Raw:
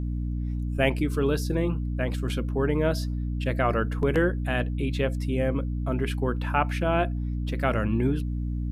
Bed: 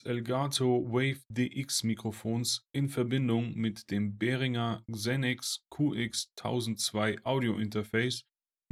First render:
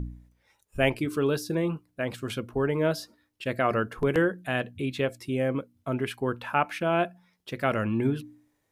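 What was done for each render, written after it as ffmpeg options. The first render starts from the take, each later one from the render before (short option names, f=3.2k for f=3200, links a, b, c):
-af "bandreject=f=60:t=h:w=4,bandreject=f=120:t=h:w=4,bandreject=f=180:t=h:w=4,bandreject=f=240:t=h:w=4,bandreject=f=300:t=h:w=4"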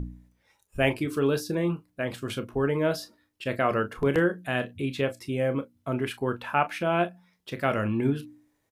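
-af "aecho=1:1:29|40:0.251|0.158"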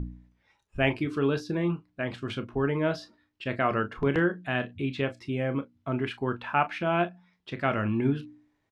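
-af "lowpass=4k,equalizer=f=510:t=o:w=0.41:g=-6"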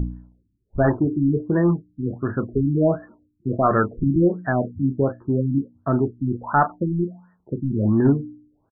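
-af "aresample=8000,aeval=exprs='0.355*sin(PI/2*2*val(0)/0.355)':c=same,aresample=44100,afftfilt=real='re*lt(b*sr/1024,330*pow(1900/330,0.5+0.5*sin(2*PI*1.4*pts/sr)))':imag='im*lt(b*sr/1024,330*pow(1900/330,0.5+0.5*sin(2*PI*1.4*pts/sr)))':win_size=1024:overlap=0.75"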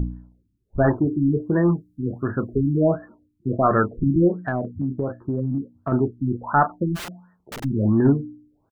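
-filter_complex "[0:a]asettb=1/sr,asplit=3[a][b][c];[a]atrim=end=0.924[d];[b]atrim=start=0.92:end=2.89,asetpts=PTS-STARTPTS,afade=t=in:d=0.004:c=qsin,afade=t=out:st=1.966:d=0.004:c=qsin,aemphasis=mode=production:type=cd[e];[c]atrim=start=2.886[f];[d][e]acrossfade=d=0.004:c1=hsin:c2=qsin[g];[g][f]acrossfade=d=0.004:c1=qsin:c2=hsin,asettb=1/sr,asplit=3[h][i][j];[h]atrim=end=4.464[k];[i]atrim=start=4.46:end=5.92,asetpts=PTS-STARTPTS,afade=t=in:d=0.004:c=qsin,afade=t=out:st=1.456:d=0.004:c=qsin,acompressor=threshold=-20dB:ratio=6:attack=3.2:release=140:knee=1:detection=peak[l];[j]atrim=start=5.916[m];[k][l]acrossfade=d=0.004:c1=hsin:c2=qsin[n];[n][m]acrossfade=d=0.004:c1=qsin:c2=hsin,asplit=3[o][p][q];[o]afade=t=out:st=6.95:d=0.02[r];[p]aeval=exprs='(mod(26.6*val(0)+1,2)-1)/26.6':c=same,afade=t=in:st=6.95:d=0.02,afade=t=out:st=7.63:d=0.02[s];[q]afade=t=in:st=7.63:d=0.02[t];[r][s][t]amix=inputs=3:normalize=0"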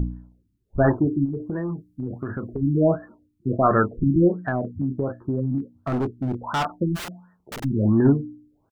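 -filter_complex "[0:a]asplit=3[a][b][c];[a]afade=t=out:st=1.24:d=0.02[d];[b]acompressor=threshold=-24dB:ratio=10:attack=3.2:release=140:knee=1:detection=peak,afade=t=in:st=1.24:d=0.02,afade=t=out:st=2.61:d=0.02[e];[c]afade=t=in:st=2.61:d=0.02[f];[d][e][f]amix=inputs=3:normalize=0,asettb=1/sr,asplit=3[g][h][i];[g]atrim=end=5.584[j];[h]atrim=start=5.58:end=6.65,asetpts=PTS-STARTPTS,afade=t=in:d=0.004:c=qsin,afade=t=out:st=1.066:d=0.004:c=qsin,asoftclip=type=hard:threshold=-20.5dB[k];[i]atrim=start=6.646[l];[j][k]acrossfade=d=0.004:c1=hsin:c2=qsin[m];[m][l]acrossfade=d=0.004:c1=qsin:c2=hsin"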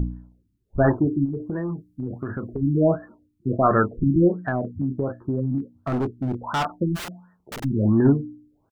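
-af anull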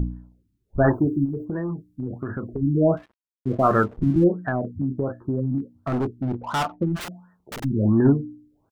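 -filter_complex "[0:a]asettb=1/sr,asplit=3[a][b][c];[a]atrim=end=0.824[d];[b]atrim=start=0.82:end=1.45,asetpts=PTS-STARTPTS,afade=t=in:d=0.004:c=qsin,afade=t=out:st=0.626:d=0.004:c=qsin,aemphasis=mode=production:type=50kf[e];[c]atrim=start=1.446[f];[d][e]acrossfade=d=0.004:c1=hsin:c2=qsin[g];[g][f]acrossfade=d=0.004:c1=qsin:c2=hsin,asettb=1/sr,asplit=3[h][i][j];[h]atrim=end=2.974[k];[i]atrim=start=2.97:end=4.24,asetpts=PTS-STARTPTS,afade=t=in:d=0.004:c=qsin,afade=t=out:st=1.266:d=0.004:c=qsin,aeval=exprs='sgn(val(0))*max(abs(val(0))-0.00562,0)':c=same[l];[j]atrim=start=4.236[m];[k][l]acrossfade=d=0.004:c1=hsin:c2=qsin[n];[n][m]acrossfade=d=0.004:c1=qsin:c2=hsin,asettb=1/sr,asplit=3[o][p][q];[o]atrim=end=6.224[r];[p]atrim=start=6.22:end=7.01,asetpts=PTS-STARTPTS,afade=t=in:d=0.004:c=qsin,afade=t=out:st=0.786:d=0.004:c=qsin,adynamicsmooth=sensitivity=8:basefreq=1.2k[s];[q]atrim=start=7.006[t];[r][s]acrossfade=d=0.004:c1=hsin:c2=qsin[u];[u][t]acrossfade=d=0.004:c1=qsin:c2=hsin"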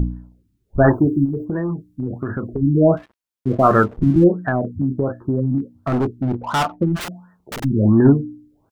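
-af "volume=5dB"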